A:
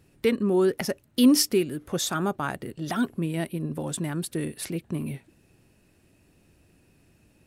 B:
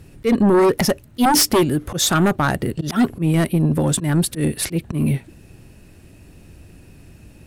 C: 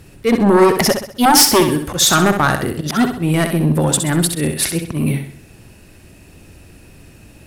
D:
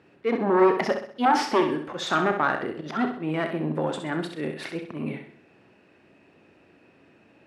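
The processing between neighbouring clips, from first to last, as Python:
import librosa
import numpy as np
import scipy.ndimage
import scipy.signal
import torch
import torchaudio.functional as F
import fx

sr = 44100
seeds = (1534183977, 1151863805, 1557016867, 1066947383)

y1 = fx.low_shelf(x, sr, hz=120.0, db=10.0)
y1 = fx.auto_swell(y1, sr, attack_ms=104.0)
y1 = fx.fold_sine(y1, sr, drive_db=11, ceiling_db=-7.5)
y1 = F.gain(torch.from_numpy(y1), -3.0).numpy()
y2 = fx.low_shelf(y1, sr, hz=390.0, db=-6.0)
y2 = fx.room_flutter(y2, sr, wall_m=11.1, rt60_s=0.51)
y2 = F.gain(torch.from_numpy(y2), 5.5).numpy()
y3 = fx.bandpass_edges(y2, sr, low_hz=280.0, high_hz=2300.0)
y3 = fx.doubler(y3, sr, ms=32.0, db=-11.5)
y3 = F.gain(torch.from_numpy(y3), -7.5).numpy()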